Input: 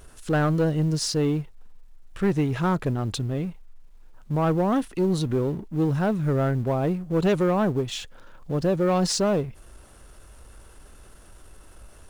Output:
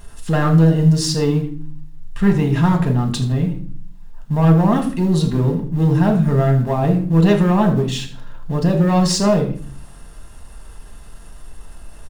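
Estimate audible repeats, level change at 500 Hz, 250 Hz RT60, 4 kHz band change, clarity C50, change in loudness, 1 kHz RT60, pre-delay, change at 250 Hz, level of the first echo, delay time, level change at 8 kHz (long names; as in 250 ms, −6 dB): 1, +4.0 dB, 0.80 s, +6.0 dB, 10.0 dB, +8.0 dB, 0.45 s, 4 ms, +8.5 dB, −13.5 dB, 79 ms, +5.5 dB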